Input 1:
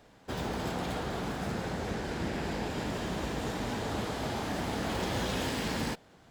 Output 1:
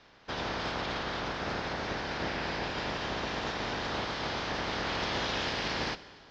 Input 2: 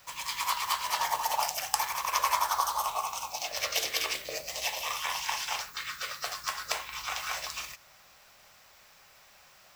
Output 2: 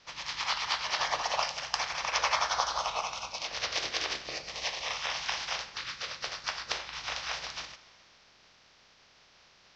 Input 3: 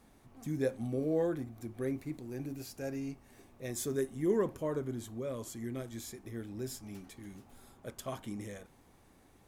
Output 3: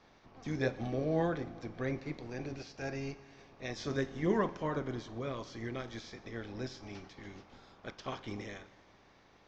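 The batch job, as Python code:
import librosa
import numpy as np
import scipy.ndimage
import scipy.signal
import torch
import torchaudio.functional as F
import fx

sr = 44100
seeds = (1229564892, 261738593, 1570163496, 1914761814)

y = fx.spec_clip(x, sr, under_db=14)
y = scipy.signal.sosfilt(scipy.signal.butter(8, 5800.0, 'lowpass', fs=sr, output='sos'), y)
y = fx.rev_schroeder(y, sr, rt60_s=2.0, comb_ms=32, drr_db=15.5)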